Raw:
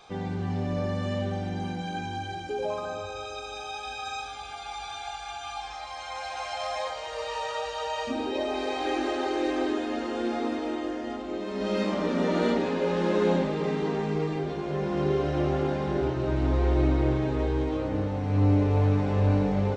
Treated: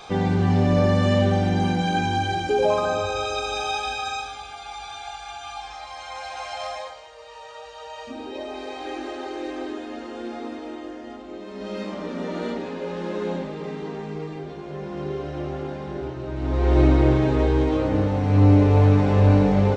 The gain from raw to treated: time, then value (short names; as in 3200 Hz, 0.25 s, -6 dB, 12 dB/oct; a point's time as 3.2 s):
3.71 s +10.5 dB
4.52 s +1 dB
6.67 s +1 dB
7.16 s -11 dB
8.35 s -4 dB
16.33 s -4 dB
16.78 s +7 dB